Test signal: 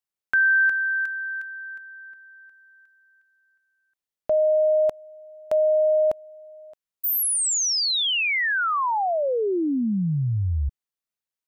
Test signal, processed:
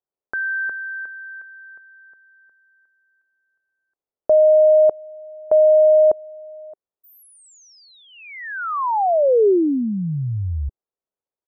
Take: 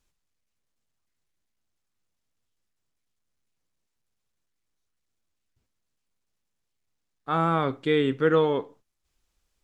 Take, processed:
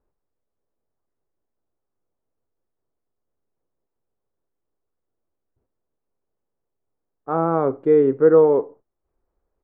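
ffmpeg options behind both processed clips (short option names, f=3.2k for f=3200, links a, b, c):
-af "firequalizer=gain_entry='entry(200,0);entry(400,10);entry(3200,-27)':delay=0.05:min_phase=1"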